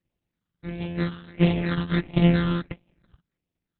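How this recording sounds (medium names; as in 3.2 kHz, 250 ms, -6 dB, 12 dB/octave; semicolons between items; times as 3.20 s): a buzz of ramps at a fixed pitch in blocks of 256 samples; phasing stages 8, 1.5 Hz, lowest notch 660–1400 Hz; Opus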